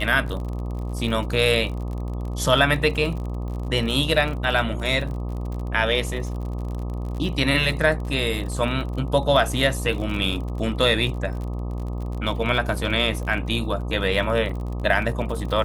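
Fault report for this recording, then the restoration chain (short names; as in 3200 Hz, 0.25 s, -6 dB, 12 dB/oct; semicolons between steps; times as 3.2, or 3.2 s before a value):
buzz 60 Hz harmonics 21 -28 dBFS
crackle 46/s -31 dBFS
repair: de-click; de-hum 60 Hz, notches 21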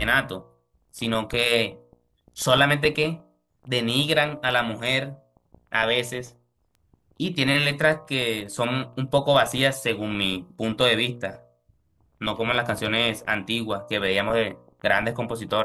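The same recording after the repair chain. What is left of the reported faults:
none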